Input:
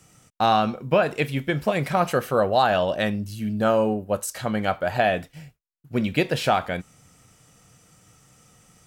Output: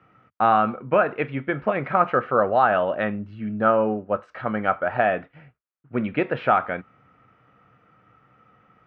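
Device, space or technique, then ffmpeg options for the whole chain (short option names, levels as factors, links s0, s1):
bass cabinet: -af "highpass=86,equalizer=f=91:t=q:w=4:g=-7,equalizer=f=160:t=q:w=4:g=-8,equalizer=f=1300:t=q:w=4:g=8,lowpass=f=2300:w=0.5412,lowpass=f=2300:w=1.3066"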